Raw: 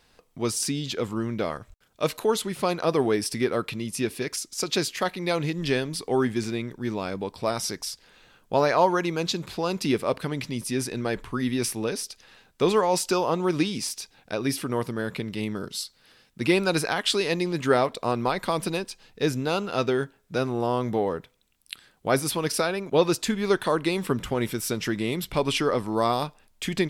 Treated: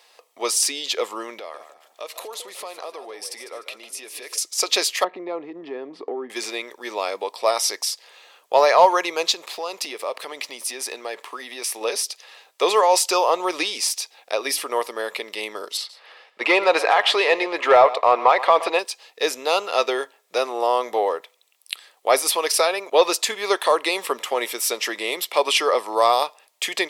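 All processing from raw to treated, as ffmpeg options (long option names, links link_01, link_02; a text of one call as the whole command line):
ffmpeg -i in.wav -filter_complex "[0:a]asettb=1/sr,asplit=3[link_01][link_02][link_03];[link_01]atrim=end=1.394[link_04];[link_02]atrim=start=1.39:end=4.38,asetpts=PTS-STARTPTS,afade=type=in:duration=0.004:curve=qsin,afade=type=out:start_time=2.986:duration=0.004:curve=qsin,acompressor=threshold=-37dB:ratio=6:attack=3.2:release=140:knee=1:detection=peak,asplit=4[link_05][link_06][link_07][link_08];[link_06]adelay=150,afreqshift=54,volume=-11dB[link_09];[link_07]adelay=300,afreqshift=108,volume=-20.9dB[link_10];[link_08]adelay=450,afreqshift=162,volume=-30.8dB[link_11];[link_05][link_09][link_10][link_11]amix=inputs=4:normalize=0,atrim=end_sample=131859[link_12];[link_03]atrim=start=4.376[link_13];[link_04][link_12]acrossfade=duration=0.004:curve1=hsin:curve2=qsin[link_14];[link_14][link_13]acrossfade=duration=0.004:curve1=qsin:curve2=hsin,asettb=1/sr,asplit=3[link_15][link_16][link_17];[link_15]atrim=end=5.044[link_18];[link_16]atrim=start=5.04:end=6.3,asetpts=PTS-STARTPTS,afade=type=in:duration=0.004:curve=qsin,afade=type=out:start_time=1.256:duration=0.004:curve=qsin,lowpass=1200,lowshelf=frequency=430:width_type=q:width=1.5:gain=10,acompressor=threshold=-23dB:ratio=6:attack=3.2:release=140:knee=1:detection=peak[link_19];[link_17]atrim=start=6.296[link_20];[link_18][link_19]acrossfade=duration=0.004:curve1=hsin:curve2=qsin[link_21];[link_21][link_20]acrossfade=duration=0.004:curve1=qsin:curve2=hsin,asettb=1/sr,asplit=3[link_22][link_23][link_24];[link_22]atrim=end=9.324[link_25];[link_23]atrim=start=9.32:end=11.81,asetpts=PTS-STARTPTS,afade=type=in:duration=0.004:curve=qsin,afade=type=out:start_time=2.486:duration=0.004:curve=qsin,aeval=exprs='sgn(val(0))*max(abs(val(0))-0.00178,0)':channel_layout=same,acompressor=threshold=-29dB:ratio=5:attack=3.2:release=140:knee=1:detection=peak[link_26];[link_24]atrim=start=11.806[link_27];[link_25][link_26]acrossfade=duration=0.004:curve1=hsin:curve2=qsin[link_28];[link_28][link_27]acrossfade=duration=0.004:curve1=qsin:curve2=hsin,asettb=1/sr,asplit=3[link_29][link_30][link_31];[link_29]atrim=end=15.774[link_32];[link_30]atrim=start=15.77:end=18.79,asetpts=PTS-STARTPTS,afade=type=in:duration=0.004:curve=qsin,afade=type=out:start_time=3.016:duration=0.004:curve=qsin,bass=frequency=250:gain=0,treble=frequency=4000:gain=-9,asplit=2[link_33][link_34];[link_34]highpass=frequency=720:poles=1,volume=15dB,asoftclip=type=tanh:threshold=-7.5dB[link_35];[link_33][link_35]amix=inputs=2:normalize=0,lowpass=frequency=1600:poles=1,volume=-6dB,aecho=1:1:122:0.15,atrim=end_sample=133182[link_36];[link_31]atrim=start=18.786[link_37];[link_32][link_36]acrossfade=duration=0.004:curve1=hsin:curve2=qsin[link_38];[link_38][link_37]acrossfade=duration=0.004:curve1=qsin:curve2=hsin,highpass=frequency=500:width=0.5412,highpass=frequency=500:width=1.3066,bandreject=frequency=1500:width=5.2,acontrast=62,volume=2dB" out.wav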